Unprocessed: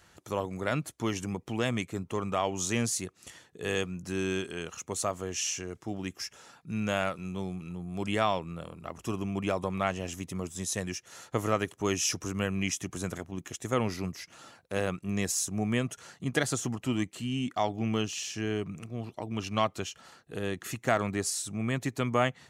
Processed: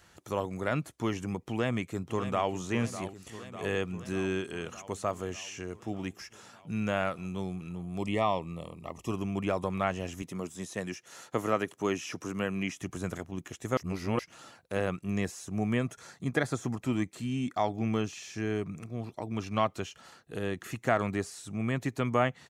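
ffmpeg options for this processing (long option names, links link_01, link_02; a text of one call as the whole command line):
ffmpeg -i in.wav -filter_complex "[0:a]asplit=2[link_01][link_02];[link_02]afade=type=in:start_time=1.39:duration=0.01,afade=type=out:start_time=2.53:duration=0.01,aecho=0:1:600|1200|1800|2400|3000|3600|4200|4800|5400|6000:0.251189|0.175832|0.123082|0.0861577|0.0603104|0.0422173|0.0295521|0.0206865|0.0144805|0.0101364[link_03];[link_01][link_03]amix=inputs=2:normalize=0,asettb=1/sr,asplit=3[link_04][link_05][link_06];[link_04]atrim=end=7.994[link_07];[link_05]atrim=start=7.99:end=9.11,asetpts=PTS-STARTPTS,afade=type=in:duration=0.004:curve=qsin,afade=type=out:start_time=1.116:duration=0.004:curve=qsin,asuperstop=centerf=1500:order=8:qfactor=2.7[link_08];[link_06]atrim=start=9.106[link_09];[link_07][link_08]acrossfade=duration=0.004:curve1=hsin:curve2=qsin[link_10];[link_10][link_09]acrossfade=duration=0.004:curve1=qsin:curve2=hsin,asettb=1/sr,asplit=3[link_11][link_12][link_13];[link_11]atrim=end=10.224[link_14];[link_12]atrim=start=10.22:end=12.77,asetpts=PTS-STARTPTS,afade=type=in:duration=0.004:curve=qsin,afade=type=out:start_time=2.546:duration=0.004:curve=qsin,highpass=150[link_15];[link_13]atrim=start=12.766[link_16];[link_14][link_15]acrossfade=duration=0.004:curve1=hsin:curve2=qsin[link_17];[link_17][link_16]acrossfade=duration=0.004:curve1=qsin:curve2=hsin,asettb=1/sr,asplit=3[link_18][link_19][link_20];[link_18]atrim=end=15.784[link_21];[link_19]atrim=start=15.78:end=19.54,asetpts=PTS-STARTPTS,afade=type=in:duration=0.004:curve=qsin,afade=type=out:start_time=3.756:duration=0.004:curve=qsin,bandreject=frequency=2900:width=6.4[link_22];[link_20]atrim=start=19.536[link_23];[link_21][link_22]acrossfade=duration=0.004:curve1=hsin:curve2=qsin[link_24];[link_24][link_23]acrossfade=duration=0.004:curve1=qsin:curve2=hsin,asplit=3[link_25][link_26][link_27];[link_25]atrim=end=13.772[link_28];[link_26]atrim=start=13.768:end=14.192,asetpts=PTS-STARTPTS,areverse[link_29];[link_27]atrim=start=14.188[link_30];[link_28][link_29]acrossfade=duration=0.004:curve1=hsin:curve2=hsin[link_31];[link_31][link_30]acrossfade=duration=0.004:curve1=hsin:curve2=hsin,acrossover=split=2700[link_32][link_33];[link_33]acompressor=threshold=-45dB:ratio=4:attack=1:release=60[link_34];[link_32][link_34]amix=inputs=2:normalize=0" out.wav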